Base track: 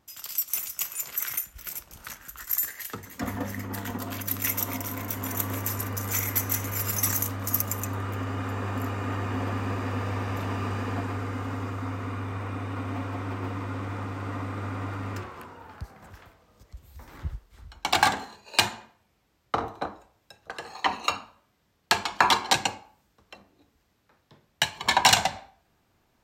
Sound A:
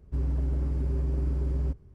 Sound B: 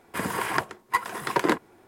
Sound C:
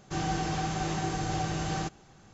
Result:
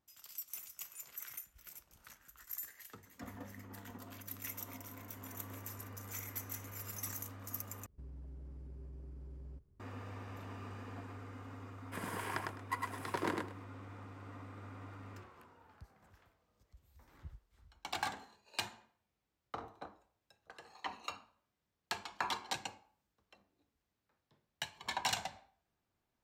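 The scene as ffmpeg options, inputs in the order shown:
-filter_complex "[0:a]volume=-17dB[a];[1:a]acompressor=threshold=-30dB:ratio=6:attack=3.2:release=140:knee=1:detection=peak[b];[2:a]aecho=1:1:104|208|312:0.708|0.127|0.0229[c];[a]asplit=2[d][e];[d]atrim=end=7.864[f];[b]atrim=end=1.94,asetpts=PTS-STARTPTS,volume=-16dB[g];[e]atrim=start=9.796[h];[c]atrim=end=1.87,asetpts=PTS-STARTPTS,volume=-14.5dB,afade=t=in:d=0.004:c=hsin,afade=t=out:st=1.866:d=0.004:c=hsin,adelay=519498S[i];[f][g]acrossfade=d=0.004:c1=hsin:c2=hsin[j];[j][h]acrossfade=d=0.004:c1=hsin:c2=hsin[k];[k][i]amix=inputs=2:normalize=0"

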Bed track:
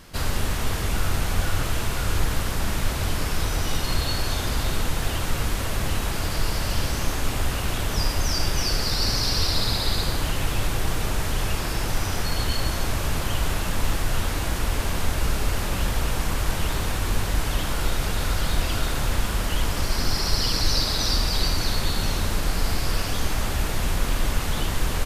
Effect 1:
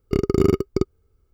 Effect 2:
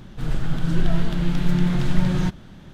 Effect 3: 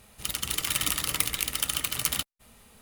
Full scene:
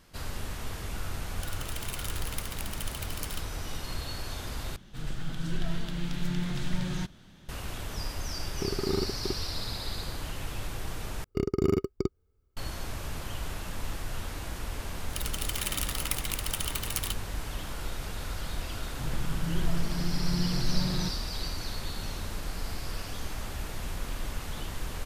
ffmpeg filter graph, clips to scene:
-filter_complex "[3:a]asplit=2[a][b];[2:a]asplit=2[c][d];[1:a]asplit=2[e][f];[0:a]volume=-11.5dB[g];[c]highshelf=f=2.1k:g=10.5[h];[e]asoftclip=type=tanh:threshold=-10dB[i];[g]asplit=3[j][k][l];[j]atrim=end=4.764[m];[h]atrim=end=2.73,asetpts=PTS-STARTPTS,volume=-11.5dB[n];[k]atrim=start=7.486:end=11.244[o];[f]atrim=end=1.33,asetpts=PTS-STARTPTS,volume=-8dB[p];[l]atrim=start=12.566[q];[a]atrim=end=2.81,asetpts=PTS-STARTPTS,volume=-12.5dB,afade=t=in:d=0.004:c=hsin,afade=t=out:st=2.806:d=0.004:c=hsin,adelay=1180[r];[i]atrim=end=1.33,asetpts=PTS-STARTPTS,volume=-10dB,afade=t=in:d=0.004:c=hsin,afade=t=out:st=1.326:d=0.004:c=hsin,adelay=8490[s];[b]atrim=end=2.81,asetpts=PTS-STARTPTS,volume=-5.5dB,afade=t=in:d=0.004:c=hsin,afade=t=out:st=2.806:d=0.004:c=hsin,adelay=14910[t];[d]atrim=end=2.73,asetpts=PTS-STARTPTS,volume=-9.5dB,afade=t=in:d=0.004:c=hsin,afade=t=out:st=2.726:d=0.004:c=hsin,adelay=18790[u];[m][n]acrossfade=d=0.004:c1=hsin:c2=hsin[v];[v][o]acrossfade=d=0.004:c1=hsin:c2=hsin[w];[w][p]acrossfade=d=0.004:c1=hsin:c2=hsin[x];[x][q]acrossfade=d=0.004:c1=hsin:c2=hsin[y];[y][r][s][t][u]amix=inputs=5:normalize=0"

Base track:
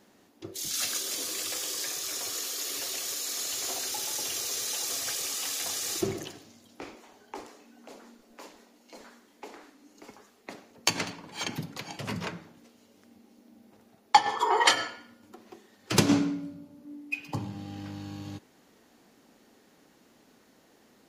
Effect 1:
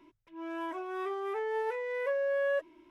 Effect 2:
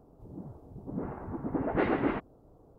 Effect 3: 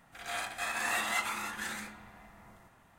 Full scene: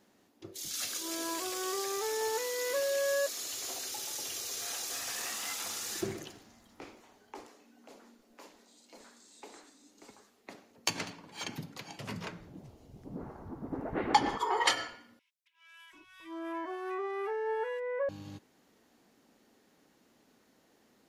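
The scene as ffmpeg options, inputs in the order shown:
-filter_complex "[1:a]asplit=2[a][b];[3:a]asplit=2[c][d];[0:a]volume=-6dB[e];[a]aeval=exprs='val(0)*gte(abs(val(0)),0.00237)':c=same[f];[d]asuperpass=centerf=5800:order=8:qfactor=1.3[g];[b]acrossover=split=2000[h][i];[h]adelay=740[j];[j][i]amix=inputs=2:normalize=0[k];[e]asplit=2[l][m];[l]atrim=end=15.194[n];[k]atrim=end=2.9,asetpts=PTS-STARTPTS,volume=-0.5dB[o];[m]atrim=start=18.086[p];[f]atrim=end=2.9,asetpts=PTS-STARTPTS,volume=-1dB,afade=t=in:d=0.004:c=hsin,afade=t=out:st=2.896:d=0.004:c=hsin,adelay=670[q];[c]atrim=end=2.98,asetpts=PTS-STARTPTS,volume=-11.5dB,afade=t=in:d=0.004:c=hsin,afade=t=out:st=2.976:d=0.004:c=hsin,adelay=190953S[r];[g]atrim=end=2.98,asetpts=PTS-STARTPTS,volume=-16dB,afade=t=in:d=0.004:c=hsin,afade=t=out:st=2.976:d=0.004:c=hsin,adelay=8400[s];[2:a]atrim=end=2.78,asetpts=PTS-STARTPTS,volume=-6.5dB,afade=t=in:d=0.004:c=hsin,afade=t=out:st=2.776:d=0.004:c=hsin,adelay=12180[t];[n][o]acrossfade=d=0.004:c1=hsin:c2=hsin[u];[u][p]acrossfade=d=0.004:c1=hsin:c2=hsin[v];[v][q][r][s][t]amix=inputs=5:normalize=0"

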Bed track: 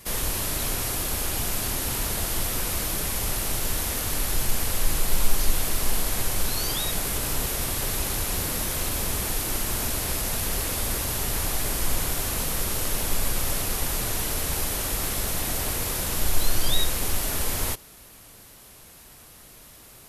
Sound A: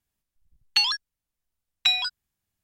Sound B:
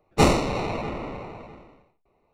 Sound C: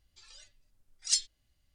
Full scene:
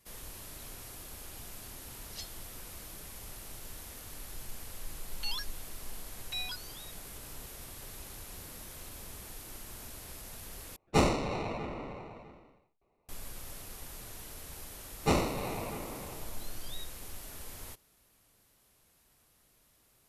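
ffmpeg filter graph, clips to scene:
-filter_complex "[2:a]asplit=2[a][b];[0:a]volume=-19dB[c];[3:a]lowpass=3.5k[d];[1:a]alimiter=limit=-16dB:level=0:latency=1:release=71[e];[c]asplit=2[f][g];[f]atrim=end=10.764[h];[a]atrim=end=2.33,asetpts=PTS-STARTPTS,volume=-7.5dB[i];[g]atrim=start=13.086[j];[d]atrim=end=1.74,asetpts=PTS-STARTPTS,volume=-9dB,afade=t=in:d=0.004:c=hsin,afade=t=out:st=1.736:d=0.004:c=hsin,adelay=1060[k];[e]atrim=end=2.63,asetpts=PTS-STARTPTS,volume=-12.5dB,afade=t=in:d=0.004:c=hsin,afade=t=out:st=2.626:d=0.004:c=hsin,adelay=4470[l];[b]atrim=end=2.33,asetpts=PTS-STARTPTS,volume=-9.5dB,afade=t=in:d=0.004:c=hsin,afade=t=out:st=2.326:d=0.004:c=hsin,adelay=14880[m];[h][i]acrossfade=d=0.004:c1=hsin:c2=hsin[n];[n][j]acrossfade=d=0.004:c1=hsin:c2=hsin[o];[o][k][l][m]amix=inputs=4:normalize=0"

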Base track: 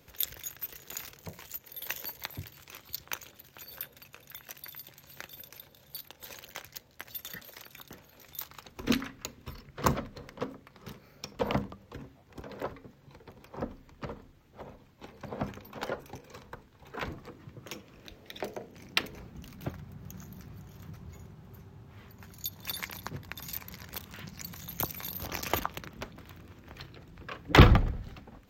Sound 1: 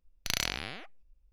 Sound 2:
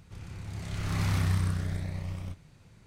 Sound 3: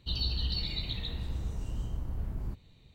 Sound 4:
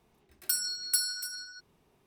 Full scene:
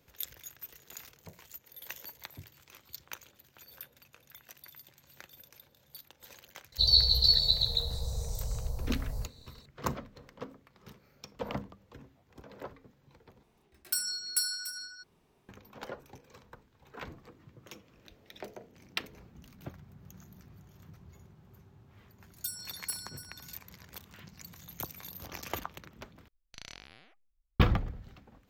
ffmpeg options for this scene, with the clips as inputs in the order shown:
-filter_complex "[4:a]asplit=2[a][b];[0:a]volume=-7dB[c];[3:a]firequalizer=gain_entry='entry(140,0);entry(320,-24);entry(460,9);entry(2600,-27);entry(4000,14)':delay=0.05:min_phase=1[d];[a]equalizer=f=12k:w=1.1:g=-2[e];[b]equalizer=f=2.2k:w=0.34:g=-7.5[f];[1:a]acrossover=split=8400[g][h];[h]acompressor=threshold=-56dB:ratio=4:attack=1:release=60[i];[g][i]amix=inputs=2:normalize=0[j];[c]asplit=3[k][l][m];[k]atrim=end=13.434[n];[e]atrim=end=2.06,asetpts=PTS-STARTPTS,volume=-1dB[o];[l]atrim=start=15.486:end=26.284[p];[j]atrim=end=1.32,asetpts=PTS-STARTPTS,volume=-16dB[q];[m]atrim=start=27.596[r];[d]atrim=end=2.94,asetpts=PTS-STARTPTS,afade=t=in:d=0.004:c=hsin,afade=t=out:st=2.936:d=0.004:c=hsin,adelay=6720[s];[f]atrim=end=2.06,asetpts=PTS-STARTPTS,volume=-7dB,afade=t=in:d=0.004:c=hsin,afade=t=out:st=2.056:d=0.004:c=hsin,adelay=21950[t];[n][o]acrossfade=d=0.004:c1=hsin:c2=hsin[u];[u][p]acrossfade=d=0.004:c1=hsin:c2=hsin[v];[v][q]acrossfade=d=0.004:c1=hsin:c2=hsin[w];[w][r]acrossfade=d=0.004:c1=hsin:c2=hsin[x];[x][s][t]amix=inputs=3:normalize=0"

